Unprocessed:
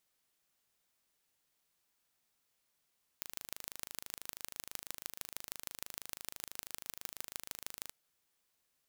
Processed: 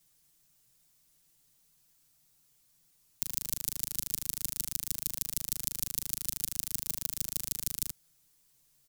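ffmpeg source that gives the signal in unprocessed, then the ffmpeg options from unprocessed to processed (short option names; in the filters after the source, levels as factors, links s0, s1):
-f lavfi -i "aevalsrc='0.266*eq(mod(n,1690),0)*(0.5+0.5*eq(mod(n,6760),0))':d=4.71:s=44100"
-filter_complex "[0:a]bass=f=250:g=15,treble=f=4000:g=10,aecho=1:1:6.6:0.92,acrossover=split=280|430|3200[s0][s1][s2][s3];[s2]alimiter=level_in=5.96:limit=0.0631:level=0:latency=1,volume=0.168[s4];[s0][s1][s4][s3]amix=inputs=4:normalize=0"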